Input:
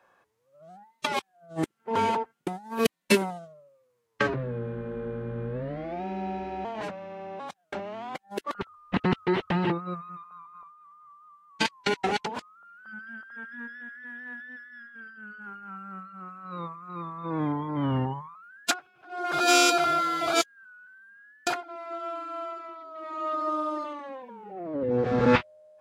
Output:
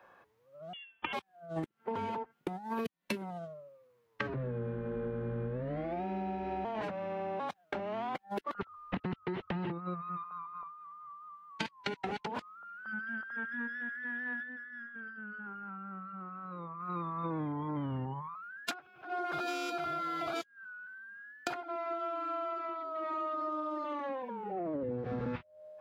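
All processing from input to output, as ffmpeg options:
ffmpeg -i in.wav -filter_complex "[0:a]asettb=1/sr,asplit=3[link_01][link_02][link_03];[link_01]atrim=end=0.734[link_04];[link_02]atrim=start=0.73:end=1.13,asetpts=PTS-STARTPTS,afade=type=in:duration=0.004:curve=qsin,afade=type=out:start_time=0.396:duration=0.004:curve=qsin,aemphasis=mode=production:type=75fm,lowpass=frequency=3100:width_type=q:width=0.5098,lowpass=frequency=3100:width_type=q:width=0.6013,lowpass=frequency=3100:width_type=q:width=0.9,lowpass=frequency=3100:width_type=q:width=2.563,afreqshift=-3600[link_05];[link_03]atrim=start=1.126[link_06];[link_04][link_05]acrossfade=duration=0.004:curve1=hsin:curve2=qsin[link_07];[link_07][link_06]acrossfade=duration=0.004:curve1=qsin:curve2=hsin,asettb=1/sr,asplit=3[link_08][link_09][link_10];[link_08]atrim=end=14.434[link_11];[link_09]atrim=start=14.43:end=16.8,asetpts=PTS-STARTPTS,afade=type=in:duration=0.004:curve=qsin,afade=type=out:start_time=2.366:duration=0.004:curve=qsin,lowpass=frequency=1700:poles=1,acompressor=threshold=-44dB:ratio=6:attack=3.2:release=140:knee=1:detection=peak[link_12];[link_10]atrim=start=16.796[link_13];[link_11][link_12]acrossfade=duration=0.004:curve1=hsin:curve2=qsin[link_14];[link_14][link_13]acrossfade=duration=0.004:curve1=qsin:curve2=hsin,acrossover=split=230[link_15][link_16];[link_16]acompressor=threshold=-32dB:ratio=2[link_17];[link_15][link_17]amix=inputs=2:normalize=0,equalizer=frequency=8200:width_type=o:width=1.5:gain=-10.5,acompressor=threshold=-37dB:ratio=12,volume=4dB" out.wav

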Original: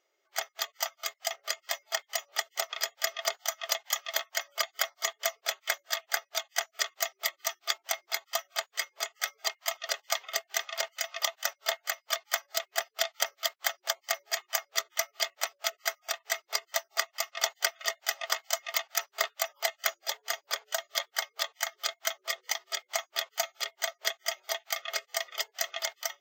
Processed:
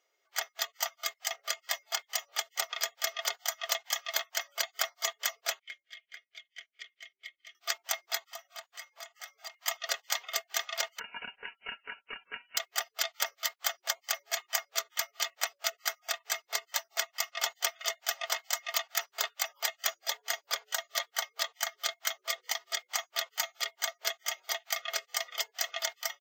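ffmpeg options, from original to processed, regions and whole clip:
ffmpeg -i in.wav -filter_complex "[0:a]asettb=1/sr,asplit=3[link_01][link_02][link_03];[link_01]atrim=end=5.594[link_04];[link_02]atrim=start=5.59:end=7.55,asetpts=PTS-STARTPTS,afade=type=in:duration=0.004:curve=qsin,afade=type=out:start_time=1.956:duration=0.004:curve=qsin,asplit=3[link_05][link_06][link_07];[link_05]bandpass=frequency=270:width_type=q:width=8,volume=0dB[link_08];[link_06]bandpass=frequency=2290:width_type=q:width=8,volume=-6dB[link_09];[link_07]bandpass=frequency=3010:width_type=q:width=8,volume=-9dB[link_10];[link_08][link_09][link_10]amix=inputs=3:normalize=0,equalizer=frequency=3700:width_type=o:width=2:gain=-2.5[link_11];[link_03]atrim=start=7.546[link_12];[link_04][link_11]acrossfade=duration=0.004:curve1=hsin:curve2=qsin[link_13];[link_13][link_12]acrossfade=duration=0.004:curve1=qsin:curve2=hsin,asettb=1/sr,asplit=3[link_14][link_15][link_16];[link_14]atrim=end=8.274[link_17];[link_15]atrim=start=8.27:end=9.54,asetpts=PTS-STARTPTS,afade=type=in:duration=0.004:curve=qsin,afade=type=out:start_time=1.266:duration=0.004:curve=qsin,lowshelf=frequency=440:width_type=q:width=1.5:gain=-13,acompressor=threshold=-50dB:ratio=2:attack=3.2:release=140:knee=1:detection=peak,asoftclip=type=hard:threshold=-33dB[link_18];[link_16]atrim=start=9.536[link_19];[link_17][link_18]acrossfade=duration=0.004:curve1=hsin:curve2=qsin[link_20];[link_20][link_19]acrossfade=duration=0.004:curve1=qsin:curve2=hsin,asettb=1/sr,asplit=3[link_21][link_22][link_23];[link_21]atrim=end=10.994[link_24];[link_22]atrim=start=10.99:end=12.57,asetpts=PTS-STARTPTS,afade=type=in:duration=0.004:curve=qsin,afade=type=out:start_time=1.576:duration=0.004:curve=qsin,aecho=1:1:5.5:0.41,atrim=end_sample=69678,acompressor=threshold=-36dB:ratio=2.5:attack=3.2:release=140:knee=1:detection=peak,lowpass=frequency=3000:width_type=q:width=0.5098,lowpass=frequency=3000:width_type=q:width=0.6013,lowpass=frequency=3000:width_type=q:width=0.9,lowpass=frequency=3000:width_type=q:width=2.563,afreqshift=-3500[link_25];[link_23]atrim=start=12.566[link_26];[link_24][link_25]acrossfade=duration=0.004:curve1=hsin:curve2=qsin[link_27];[link_27][link_26]acrossfade=duration=0.004:curve1=qsin:curve2=hsin,lowshelf=frequency=340:gain=-8.5,aecho=1:1:4.2:0.33,afftfilt=real='re*lt(hypot(re,im),0.158)':imag='im*lt(hypot(re,im),0.158)':win_size=1024:overlap=0.75" out.wav

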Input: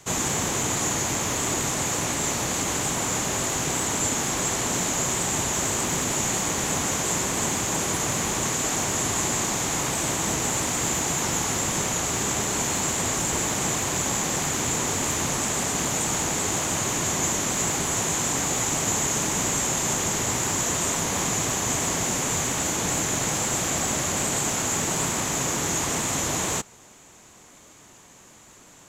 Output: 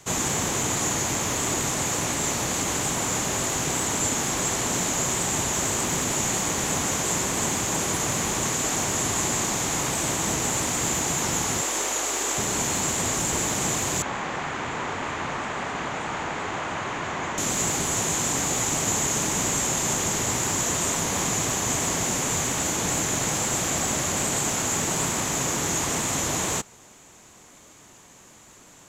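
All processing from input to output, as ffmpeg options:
ffmpeg -i in.wav -filter_complex "[0:a]asettb=1/sr,asplit=3[link_01][link_02][link_03];[link_01]atrim=end=11.614[link_04];[link_02]atrim=start=11.61:end=12.38,asetpts=PTS-STARTPTS,afade=type=in:duration=0.004:curve=qsin,afade=type=out:start_time=0.766:duration=0.004:curve=qsin,highpass=frequency=310:width=0.5412,highpass=frequency=310:width=1.3066,aeval=exprs='val(0)+0.00282*(sin(2*PI*50*n/s)+sin(2*PI*2*50*n/s)/2+sin(2*PI*3*50*n/s)/3+sin(2*PI*4*50*n/s)/4+sin(2*PI*5*50*n/s)/5)':channel_layout=same[link_05];[link_03]atrim=start=12.376[link_06];[link_04][link_05]acrossfade=duration=0.004:curve1=hsin:curve2=qsin[link_07];[link_07][link_06]acrossfade=duration=0.004:curve1=qsin:curve2=hsin,asettb=1/sr,asplit=3[link_08][link_09][link_10];[link_08]atrim=end=14.024[link_11];[link_09]atrim=start=14.02:end=17.38,asetpts=PTS-STARTPTS,afade=type=in:duration=0.004:curve=qsin,afade=type=out:start_time=3.356:duration=0.004:curve=qsin,lowpass=1700,tiltshelf=frequency=700:gain=-7[link_12];[link_10]atrim=start=17.376[link_13];[link_11][link_12]acrossfade=duration=0.004:curve1=hsin:curve2=qsin[link_14];[link_14][link_13]acrossfade=duration=0.004:curve1=qsin:curve2=hsin" out.wav

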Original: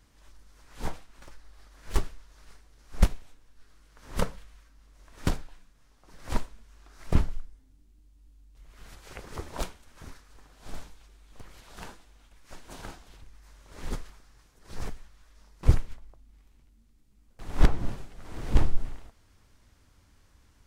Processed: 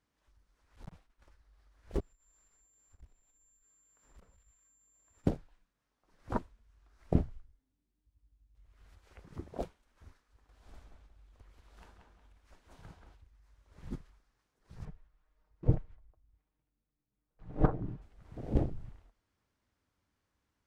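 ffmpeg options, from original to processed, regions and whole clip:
ffmpeg -i in.wav -filter_complex "[0:a]asettb=1/sr,asplit=3[link_01][link_02][link_03];[link_01]atrim=end=0.764[link_04];[link_02]atrim=start=0.76:end=1.26,asetpts=PTS-STARTPTS,afade=type=in:duration=0.004:curve=qsin,afade=type=out:start_time=0.496:duration=0.004:curve=qsin,agate=range=-33dB:threshold=-48dB:ratio=3:release=100:detection=peak,asoftclip=type=hard:threshold=-31dB[link_05];[link_03]atrim=start=1.256[link_06];[link_04][link_05]acrossfade=duration=0.004:curve1=hsin:curve2=qsin[link_07];[link_07][link_06]acrossfade=duration=0.004:curve1=qsin:curve2=hsin,asettb=1/sr,asplit=3[link_08][link_09][link_10];[link_08]atrim=end=2.004[link_11];[link_09]atrim=start=2:end=5.26,asetpts=PTS-STARTPTS,afade=type=in:duration=0.004:curve=qsin,afade=type=out:start_time=3.256:duration=0.004:curve=qsin,aeval=exprs='val(0)+0.00562*sin(2*PI*7300*n/s)':channel_layout=same,acompressor=threshold=-44dB:ratio=2.5:attack=3.2:release=140:knee=1:detection=peak,aeval=exprs='(tanh(79.4*val(0)+0.4)-tanh(0.4))/79.4':channel_layout=same[link_12];[link_10]atrim=start=5.256[link_13];[link_11][link_12]acrossfade=duration=0.004:curve1=hsin:curve2=qsin[link_14];[link_14][link_13]acrossfade=duration=0.004:curve1=qsin:curve2=hsin,asettb=1/sr,asplit=3[link_15][link_16][link_17];[link_15]atrim=end=10.494[link_18];[link_16]atrim=start=10.49:end=13.15,asetpts=PTS-STARTPTS,afade=type=in:duration=0.004:curve=qsin,afade=type=out:start_time=2.656:duration=0.004:curve=qsin,asplit=2[link_19][link_20];[link_20]adelay=182,lowpass=frequency=3200:poles=1,volume=-4dB,asplit=2[link_21][link_22];[link_22]adelay=182,lowpass=frequency=3200:poles=1,volume=0.3,asplit=2[link_23][link_24];[link_24]adelay=182,lowpass=frequency=3200:poles=1,volume=0.3,asplit=2[link_25][link_26];[link_26]adelay=182,lowpass=frequency=3200:poles=1,volume=0.3[link_27];[link_19][link_21][link_23][link_25][link_27]amix=inputs=5:normalize=0,atrim=end_sample=117306,acompressor=mode=upward:threshold=-42dB:ratio=2.5:attack=3.2:release=140:knee=2.83:detection=peak[link_28];[link_17]atrim=start=13.146[link_29];[link_18][link_28]acrossfade=duration=0.004:curve1=hsin:curve2=qsin[link_30];[link_30][link_29]acrossfade=duration=0.004:curve1=qsin:curve2=hsin,asettb=1/sr,asplit=3[link_31][link_32][link_33];[link_31]atrim=end=14.854[link_34];[link_32]atrim=start=14.85:end=18.02,asetpts=PTS-STARTPTS,afade=type=in:duration=0.004:curve=qsin,afade=type=out:start_time=3.166:duration=0.004:curve=qsin,lowpass=frequency=1500:poles=1,equalizer=frequency=240:width=1.6:gain=-4,aecho=1:1:6.5:0.52,atrim=end_sample=139797[link_35];[link_33]atrim=start=18.016[link_36];[link_34][link_35]acrossfade=duration=0.004:curve1=hsin:curve2=qsin[link_37];[link_37][link_36]acrossfade=duration=0.004:curve1=qsin:curve2=hsin,afwtdn=0.0251,highpass=frequency=160:poles=1,highshelf=frequency=4100:gain=-7.5,volume=2dB" out.wav

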